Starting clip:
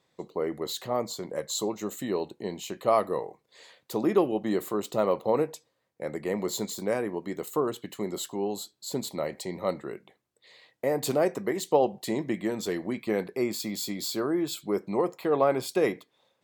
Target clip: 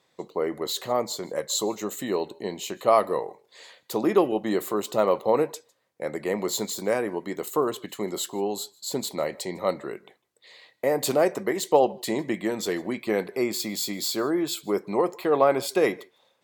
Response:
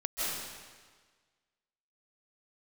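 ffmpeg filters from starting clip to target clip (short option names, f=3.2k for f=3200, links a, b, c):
-filter_complex "[0:a]lowshelf=f=250:g=-7.5[a];[1:a]atrim=start_sample=2205,afade=t=out:st=0.17:d=0.01,atrim=end_sample=7938,asetrate=35280,aresample=44100[b];[a][b]afir=irnorm=-1:irlink=0,volume=5dB"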